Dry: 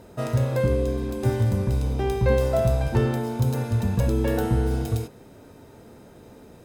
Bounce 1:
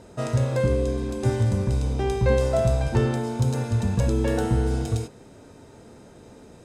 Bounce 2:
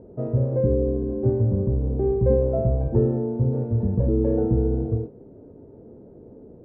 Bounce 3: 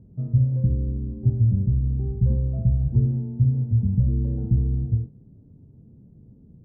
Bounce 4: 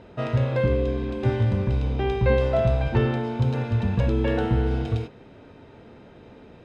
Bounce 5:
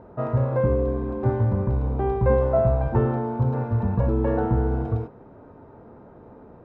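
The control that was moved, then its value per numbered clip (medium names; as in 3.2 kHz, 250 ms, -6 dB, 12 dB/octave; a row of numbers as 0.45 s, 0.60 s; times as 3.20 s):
resonant low-pass, frequency: 8 kHz, 440 Hz, 160 Hz, 3 kHz, 1.1 kHz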